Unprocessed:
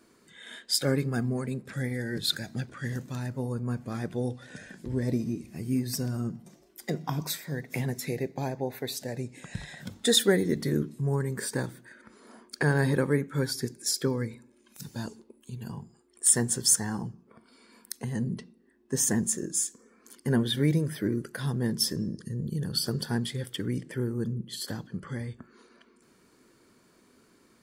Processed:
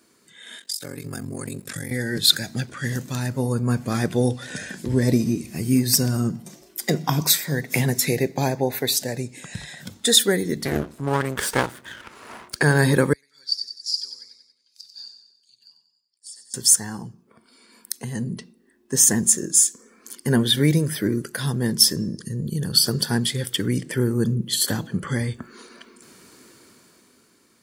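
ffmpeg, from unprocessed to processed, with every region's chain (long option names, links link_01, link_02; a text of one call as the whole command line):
ffmpeg -i in.wav -filter_complex "[0:a]asettb=1/sr,asplit=3[link_01][link_02][link_03];[link_01]atrim=end=0.584[link_04];[link_02]atrim=start=0.58:end=1.91,asetpts=PTS-STARTPTS,afade=type=in:duration=0.004:curve=qsin,afade=type=out:start_time=1.326:duration=0.004:curve=qsin,highshelf=frequency=5300:gain=11,acompressor=threshold=-31dB:ratio=20:attack=3.2:release=140:knee=1:detection=peak,aeval=exprs='val(0)*sin(2*PI*23*n/s)':channel_layout=same[link_05];[link_03]atrim=start=1.906[link_06];[link_04][link_05]acrossfade=duration=0.004:curve1=hsin:curve2=qsin[link_07];[link_07][link_06]acrossfade=duration=0.004:curve1=qsin:curve2=hsin,asettb=1/sr,asplit=3[link_08][link_09][link_10];[link_08]atrim=end=10.654[link_11];[link_09]atrim=start=10.65:end=12.56,asetpts=PTS-STARTPTS,afade=type=in:duration=0.004:curve=qsin,afade=type=out:start_time=1.906:duration=0.004:curve=qsin,equalizer=frequency=1000:width_type=o:width=2.4:gain=15,aeval=exprs='max(val(0),0)':channel_layout=same[link_12];[link_10]atrim=start=12.556[link_13];[link_11][link_12]acrossfade=duration=0.004:curve1=hsin:curve2=qsin[link_14];[link_14][link_13]acrossfade=duration=0.004:curve1=qsin:curve2=hsin,asettb=1/sr,asplit=3[link_15][link_16][link_17];[link_15]atrim=end=13.134[link_18];[link_16]atrim=start=13.13:end=16.54,asetpts=PTS-STARTPTS,afade=type=in:duration=0.004:curve=qsin,afade=type=out:start_time=3.406:duration=0.004:curve=qsin,bandpass=frequency=4700:width_type=q:width=16,aecho=1:1:93|186|279|372|465|558:0.376|0.195|0.102|0.0528|0.0275|0.0143,atrim=end_sample=150381[link_19];[link_17]atrim=start=16.536[link_20];[link_18][link_19]acrossfade=duration=0.004:curve1=hsin:curve2=qsin[link_21];[link_21][link_20]acrossfade=duration=0.004:curve1=qsin:curve2=hsin,asettb=1/sr,asplit=3[link_22][link_23][link_24];[link_22]atrim=end=24.544[link_25];[link_23]atrim=start=24.54:end=25.11,asetpts=PTS-STARTPTS,afade=type=in:duration=0.004:curve=qsin,afade=type=out:start_time=0.566:duration=0.004:curve=qsin,equalizer=frequency=5000:width_type=o:width=0.34:gain=-8,bandreject=frequency=163.9:width_type=h:width=4,bandreject=frequency=327.8:width_type=h:width=4,bandreject=frequency=491.7:width_type=h:width=4,bandreject=frequency=655.6:width_type=h:width=4,bandreject=frequency=819.5:width_type=h:width=4[link_26];[link_24]atrim=start=25.106[link_27];[link_25][link_26]acrossfade=duration=0.004:curve1=hsin:curve2=qsin[link_28];[link_28][link_27]acrossfade=duration=0.004:curve1=qsin:curve2=hsin,highpass=58,highshelf=frequency=2600:gain=8,dynaudnorm=framelen=100:gausssize=21:maxgain=11.5dB,volume=-1dB" out.wav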